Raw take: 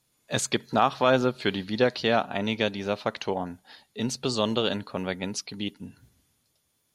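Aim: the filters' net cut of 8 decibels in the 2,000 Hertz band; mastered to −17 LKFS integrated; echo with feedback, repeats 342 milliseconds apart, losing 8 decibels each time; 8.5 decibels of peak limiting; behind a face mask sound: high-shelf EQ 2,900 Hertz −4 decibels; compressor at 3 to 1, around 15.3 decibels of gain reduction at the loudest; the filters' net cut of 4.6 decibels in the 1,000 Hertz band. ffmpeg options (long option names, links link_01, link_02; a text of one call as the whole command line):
ffmpeg -i in.wav -af "equalizer=frequency=1000:width_type=o:gain=-4,equalizer=frequency=2000:width_type=o:gain=-8,acompressor=threshold=-40dB:ratio=3,alimiter=level_in=7.5dB:limit=-24dB:level=0:latency=1,volume=-7.5dB,highshelf=frequency=2900:gain=-4,aecho=1:1:342|684|1026|1368|1710:0.398|0.159|0.0637|0.0255|0.0102,volume=27dB" out.wav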